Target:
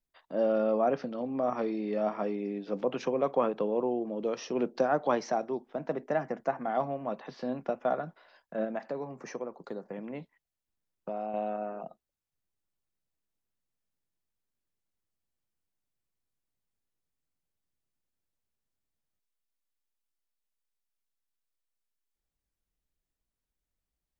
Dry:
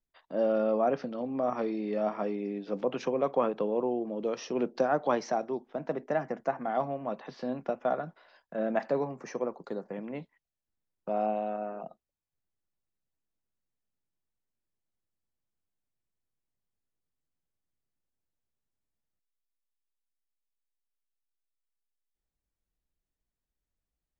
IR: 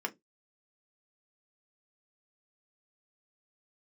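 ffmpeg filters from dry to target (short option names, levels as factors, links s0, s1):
-filter_complex "[0:a]asettb=1/sr,asplit=3[s0][s1][s2];[s0]atrim=end=8.644[s3];[s1]atrim=start=8.64:end=11.34,asetpts=PTS-STARTPTS,afade=t=in:d=0.004:c=qsin,afade=t=out:st=2.696:d=0.004:c=qsin,acompressor=threshold=0.0178:ratio=2.5[s4];[s2]atrim=start=11.336[s5];[s3][s4]acrossfade=d=0.004:c1=hsin:c2=qsin[s6];[s6][s5]acrossfade=d=0.004:c1=qsin:c2=hsin"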